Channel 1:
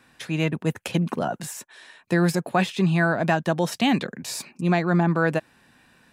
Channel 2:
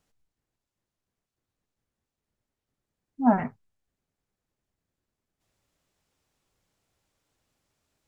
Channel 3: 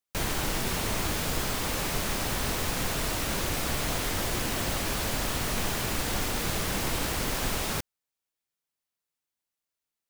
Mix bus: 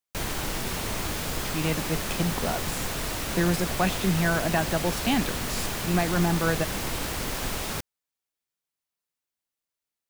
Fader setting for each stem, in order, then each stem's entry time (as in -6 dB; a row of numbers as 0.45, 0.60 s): -4.0 dB, off, -1.0 dB; 1.25 s, off, 0.00 s